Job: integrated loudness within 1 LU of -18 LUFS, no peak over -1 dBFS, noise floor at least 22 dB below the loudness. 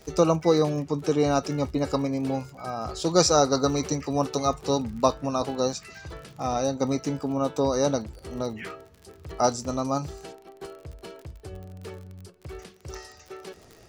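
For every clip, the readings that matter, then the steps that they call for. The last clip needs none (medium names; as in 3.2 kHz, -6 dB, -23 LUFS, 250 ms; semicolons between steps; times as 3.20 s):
tick rate 40 per s; loudness -26.0 LUFS; peak level -5.0 dBFS; loudness target -18.0 LUFS
-> de-click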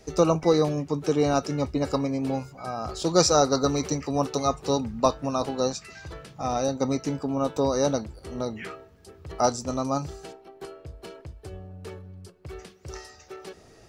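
tick rate 0.072 per s; loudness -26.0 LUFS; peak level -5.0 dBFS; loudness target -18.0 LUFS
-> trim +8 dB; peak limiter -1 dBFS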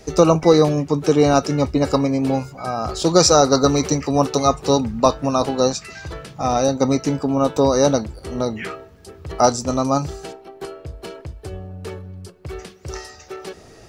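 loudness -18.0 LUFS; peak level -1.0 dBFS; noise floor -45 dBFS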